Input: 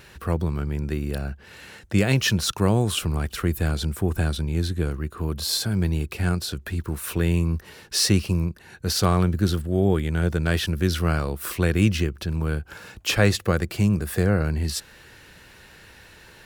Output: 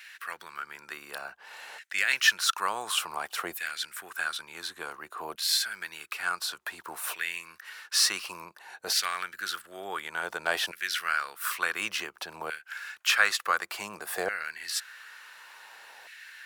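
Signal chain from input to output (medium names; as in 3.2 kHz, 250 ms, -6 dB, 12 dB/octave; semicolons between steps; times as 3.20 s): LFO high-pass saw down 0.56 Hz 710–2000 Hz; trim -2 dB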